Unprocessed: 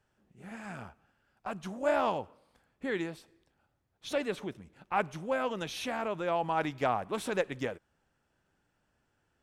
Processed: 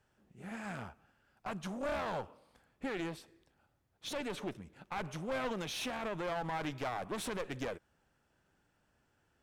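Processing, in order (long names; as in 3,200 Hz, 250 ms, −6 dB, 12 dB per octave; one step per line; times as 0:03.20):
asymmetric clip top −39.5 dBFS, bottom −19.5 dBFS
brickwall limiter −28.5 dBFS, peak gain reduction 8.5 dB
level +1 dB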